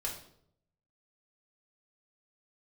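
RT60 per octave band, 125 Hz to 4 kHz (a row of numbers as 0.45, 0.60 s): 1.0, 0.80, 0.75, 0.60, 0.50, 0.50 s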